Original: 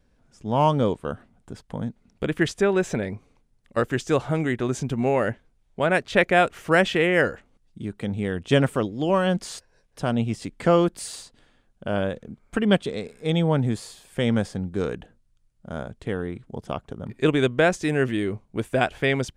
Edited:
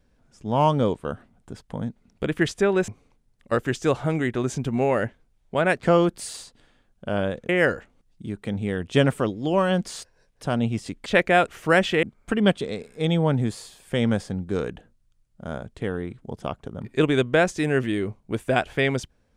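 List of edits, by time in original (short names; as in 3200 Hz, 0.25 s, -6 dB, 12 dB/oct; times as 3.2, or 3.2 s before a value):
2.88–3.13 cut
6.08–7.05 swap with 10.62–12.28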